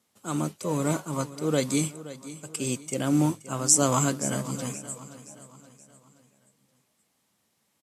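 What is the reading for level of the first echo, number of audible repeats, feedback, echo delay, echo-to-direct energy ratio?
-15.5 dB, 3, 44%, 524 ms, -14.5 dB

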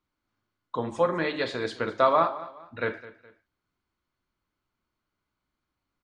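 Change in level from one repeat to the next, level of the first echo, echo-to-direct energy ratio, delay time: -9.0 dB, -17.0 dB, -16.5 dB, 209 ms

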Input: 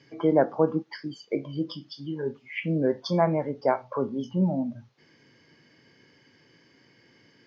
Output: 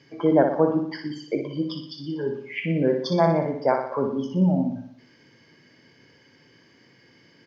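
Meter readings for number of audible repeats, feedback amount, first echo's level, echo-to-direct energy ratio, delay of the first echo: 6, 54%, -6.5 dB, -5.0 dB, 60 ms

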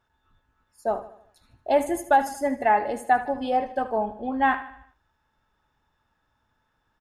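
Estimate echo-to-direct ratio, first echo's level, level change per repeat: -13.0 dB, -14.0 dB, -6.5 dB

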